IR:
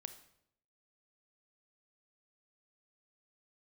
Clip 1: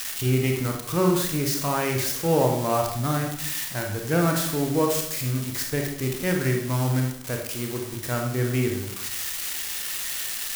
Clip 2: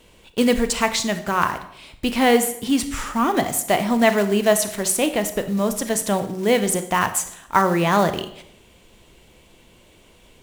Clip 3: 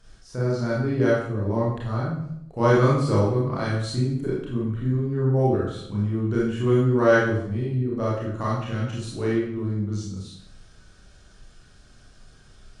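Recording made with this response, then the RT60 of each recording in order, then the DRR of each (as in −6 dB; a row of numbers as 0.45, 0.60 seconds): 2; 0.75, 0.75, 0.75 seconds; 1.5, 9.5, −7.0 decibels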